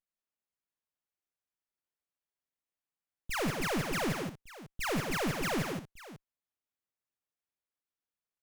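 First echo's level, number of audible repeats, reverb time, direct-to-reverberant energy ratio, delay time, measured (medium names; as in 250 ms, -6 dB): -17.5 dB, 4, no reverb, no reverb, 51 ms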